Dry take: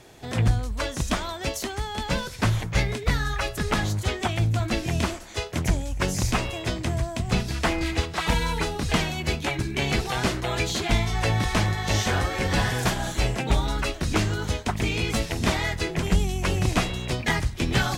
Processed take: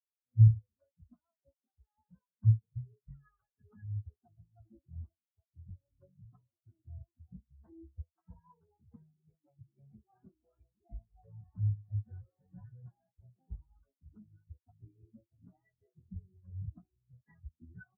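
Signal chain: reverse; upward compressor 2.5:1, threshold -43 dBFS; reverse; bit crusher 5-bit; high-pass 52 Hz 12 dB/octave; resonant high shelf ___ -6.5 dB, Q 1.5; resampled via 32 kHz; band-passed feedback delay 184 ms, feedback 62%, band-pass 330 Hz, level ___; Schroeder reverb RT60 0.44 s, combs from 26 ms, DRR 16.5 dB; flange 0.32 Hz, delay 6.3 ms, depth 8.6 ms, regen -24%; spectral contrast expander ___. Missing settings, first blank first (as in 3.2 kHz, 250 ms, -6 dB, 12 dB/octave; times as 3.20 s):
2 kHz, -11 dB, 4:1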